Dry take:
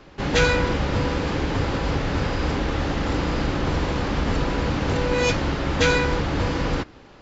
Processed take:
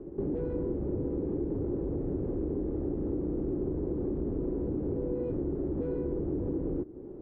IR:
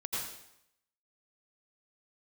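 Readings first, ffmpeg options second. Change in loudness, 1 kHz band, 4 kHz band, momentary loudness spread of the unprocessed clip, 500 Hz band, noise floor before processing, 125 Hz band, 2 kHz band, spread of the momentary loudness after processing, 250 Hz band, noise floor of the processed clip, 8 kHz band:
-9.5 dB, -26.0 dB, under -40 dB, 5 LU, -7.5 dB, -47 dBFS, -11.5 dB, under -35 dB, 1 LU, -5.5 dB, -43 dBFS, n/a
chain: -af "asoftclip=type=tanh:threshold=-21.5dB,lowpass=f=370:t=q:w=4.5,acompressor=threshold=-32dB:ratio=3"

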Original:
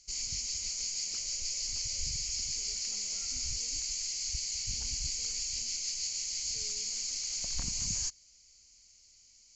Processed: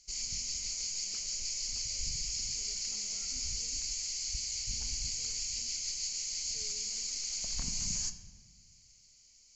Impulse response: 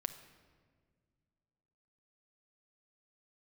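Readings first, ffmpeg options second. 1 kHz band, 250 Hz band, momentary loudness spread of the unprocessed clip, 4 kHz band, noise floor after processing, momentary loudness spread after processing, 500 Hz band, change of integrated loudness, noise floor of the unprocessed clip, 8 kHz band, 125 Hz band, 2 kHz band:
n/a, +0.5 dB, 1 LU, -1.0 dB, -62 dBFS, 1 LU, -0.5 dB, -1.0 dB, -61 dBFS, -1.0 dB, -1.5 dB, -1.0 dB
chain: -filter_complex "[1:a]atrim=start_sample=2205,asetrate=57330,aresample=44100[a];[0:a][a]afir=irnorm=-1:irlink=0,volume=2dB"

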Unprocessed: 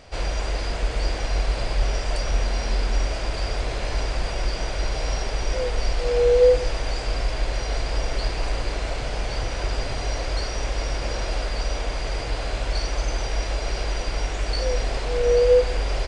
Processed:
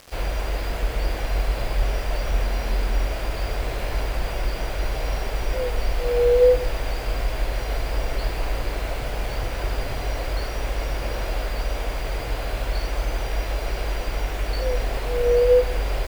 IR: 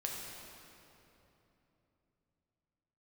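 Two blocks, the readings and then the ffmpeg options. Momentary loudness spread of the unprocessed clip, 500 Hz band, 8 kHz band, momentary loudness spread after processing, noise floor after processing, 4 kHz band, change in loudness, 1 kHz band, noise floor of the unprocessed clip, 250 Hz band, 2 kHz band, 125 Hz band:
9 LU, 0.0 dB, -4.5 dB, 10 LU, -29 dBFS, -4.0 dB, -0.5 dB, 0.0 dB, -29 dBFS, 0.0 dB, -0.5 dB, 0.0 dB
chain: -filter_complex "[0:a]acrossover=split=4000[a][b];[b]acompressor=threshold=-52dB:ratio=4:attack=1:release=60[c];[a][c]amix=inputs=2:normalize=0,acrusher=bits=6:mix=0:aa=0.000001"

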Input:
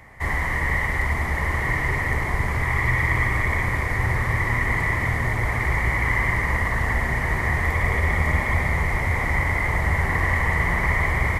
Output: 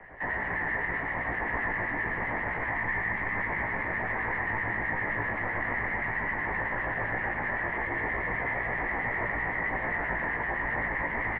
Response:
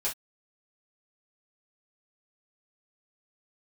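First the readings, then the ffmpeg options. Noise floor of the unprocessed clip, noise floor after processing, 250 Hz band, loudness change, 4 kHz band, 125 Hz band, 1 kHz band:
-25 dBFS, -33 dBFS, -7.0 dB, -7.5 dB, under -15 dB, -17.5 dB, -5.5 dB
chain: -filter_complex "[0:a]acrossover=split=110|370[a][b][c];[a]acompressor=threshold=-35dB:ratio=4[d];[b]acompressor=threshold=-36dB:ratio=4[e];[c]acompressor=threshold=-25dB:ratio=4[f];[d][e][f]amix=inputs=3:normalize=0,asplit=2[g][h];[h]alimiter=level_in=0.5dB:limit=-24dB:level=0:latency=1:release=187,volume=-0.5dB,volume=3dB[i];[g][i]amix=inputs=2:normalize=0,acrusher=bits=3:mode=log:mix=0:aa=0.000001,acrossover=split=1700[j][k];[j]aeval=exprs='val(0)*(1-0.7/2+0.7/2*cos(2*PI*7.7*n/s))':c=same[l];[k]aeval=exprs='val(0)*(1-0.7/2-0.7/2*cos(2*PI*7.7*n/s))':c=same[m];[l][m]amix=inputs=2:normalize=0,asplit=2[n][o];[o]adelay=17,volume=-4dB[p];[n][p]amix=inputs=2:normalize=0,asplit=2[q][r];[r]asplit=5[s][t][u][v][w];[s]adelay=97,afreqshift=110,volume=-9.5dB[x];[t]adelay=194,afreqshift=220,volume=-16.6dB[y];[u]adelay=291,afreqshift=330,volume=-23.8dB[z];[v]adelay=388,afreqshift=440,volume=-30.9dB[aa];[w]adelay=485,afreqshift=550,volume=-38dB[ab];[x][y][z][aa][ab]amix=inputs=5:normalize=0[ac];[q][ac]amix=inputs=2:normalize=0,highpass=f=150:t=q:w=0.5412,highpass=f=150:t=q:w=1.307,lowpass=f=2.6k:t=q:w=0.5176,lowpass=f=2.6k:t=q:w=0.7071,lowpass=f=2.6k:t=q:w=1.932,afreqshift=-120,volume=-5.5dB"

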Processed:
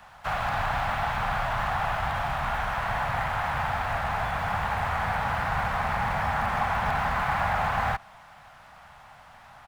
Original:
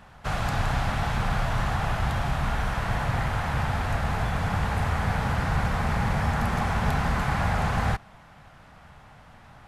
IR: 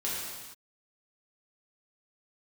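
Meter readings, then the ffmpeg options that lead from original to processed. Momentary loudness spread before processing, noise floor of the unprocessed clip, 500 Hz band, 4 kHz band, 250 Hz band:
2 LU, -51 dBFS, 0.0 dB, -1.5 dB, -8.5 dB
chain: -filter_complex "[0:a]aresample=32000,aresample=44100,acrossover=split=3500[a][b];[b]acompressor=threshold=-55dB:ratio=4:attack=1:release=60[c];[a][c]amix=inputs=2:normalize=0,acrossover=split=400|590|2500[d][e][f][g];[g]acrusher=bits=2:mode=log:mix=0:aa=0.000001[h];[d][e][f][h]amix=inputs=4:normalize=0,lowshelf=f=540:t=q:w=1.5:g=-9,volume=1.5dB"

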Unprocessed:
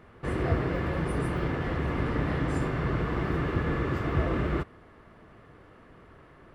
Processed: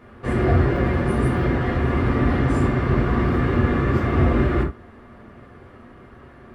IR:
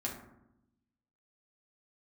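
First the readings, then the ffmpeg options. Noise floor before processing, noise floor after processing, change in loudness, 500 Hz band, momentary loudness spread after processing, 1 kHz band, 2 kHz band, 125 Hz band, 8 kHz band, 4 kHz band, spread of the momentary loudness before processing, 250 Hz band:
-54 dBFS, -46 dBFS, +9.0 dB, +8.0 dB, 3 LU, +7.5 dB, +7.0 dB, +9.0 dB, n/a, +5.0 dB, 3 LU, +9.5 dB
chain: -filter_complex "[1:a]atrim=start_sample=2205,afade=t=out:st=0.14:d=0.01,atrim=end_sample=6615[a];[0:a][a]afir=irnorm=-1:irlink=0,volume=5.5dB"

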